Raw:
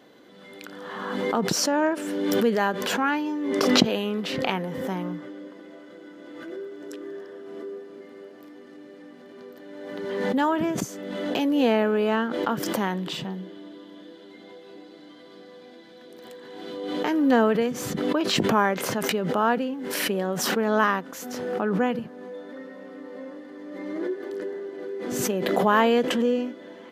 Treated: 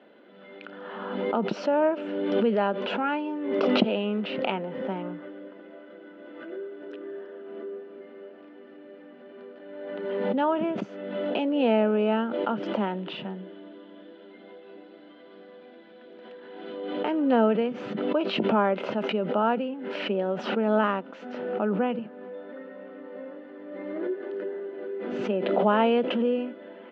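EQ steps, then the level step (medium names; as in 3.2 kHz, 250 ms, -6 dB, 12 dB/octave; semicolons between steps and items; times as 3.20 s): cabinet simulation 200–3300 Hz, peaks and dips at 210 Hz +8 dB, 380 Hz +4 dB, 600 Hz +8 dB, 890 Hz +3 dB, 1.4 kHz +6 dB, 2.7 kHz +6 dB; band-stop 1.1 kHz, Q 13; dynamic bell 1.7 kHz, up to -7 dB, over -40 dBFS, Q 2.5; -5.0 dB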